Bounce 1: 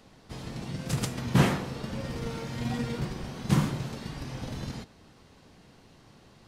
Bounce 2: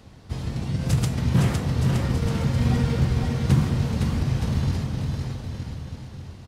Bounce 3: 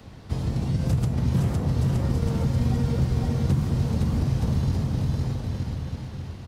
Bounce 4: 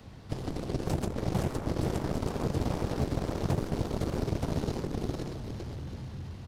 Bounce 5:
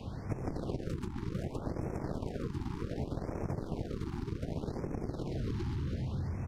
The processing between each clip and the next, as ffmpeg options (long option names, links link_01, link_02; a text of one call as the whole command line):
ffmpeg -i in.wav -filter_complex "[0:a]equalizer=frequency=79:width=0.89:gain=14.5,alimiter=limit=-13.5dB:level=0:latency=1:release=295,asplit=2[link_01][link_02];[link_02]aecho=0:1:510|918|1244|1506|1714:0.631|0.398|0.251|0.158|0.1[link_03];[link_01][link_03]amix=inputs=2:normalize=0,volume=3dB" out.wav
ffmpeg -i in.wav -filter_complex "[0:a]equalizer=frequency=8100:width_type=o:width=1.5:gain=-3.5,acrossover=split=94|1100|4400[link_01][link_02][link_03][link_04];[link_01]acompressor=threshold=-29dB:ratio=4[link_05];[link_02]acompressor=threshold=-27dB:ratio=4[link_06];[link_03]acompressor=threshold=-55dB:ratio=4[link_07];[link_04]acompressor=threshold=-51dB:ratio=4[link_08];[link_05][link_06][link_07][link_08]amix=inputs=4:normalize=0,volume=3.5dB" out.wav
ffmpeg -i in.wav -af "aeval=exprs='0.266*(cos(1*acos(clip(val(0)/0.266,-1,1)))-cos(1*PI/2))+0.106*(cos(7*acos(clip(val(0)/0.266,-1,1)))-cos(7*PI/2))':channel_layout=same,volume=-9dB" out.wav
ffmpeg -i in.wav -af "highshelf=frequency=5000:gain=-11,acompressor=threshold=-39dB:ratio=10,afftfilt=real='re*(1-between(b*sr/1024,540*pow(3800/540,0.5+0.5*sin(2*PI*0.66*pts/sr))/1.41,540*pow(3800/540,0.5+0.5*sin(2*PI*0.66*pts/sr))*1.41))':imag='im*(1-between(b*sr/1024,540*pow(3800/540,0.5+0.5*sin(2*PI*0.66*pts/sr))/1.41,540*pow(3800/540,0.5+0.5*sin(2*PI*0.66*pts/sr))*1.41))':win_size=1024:overlap=0.75,volume=7dB" out.wav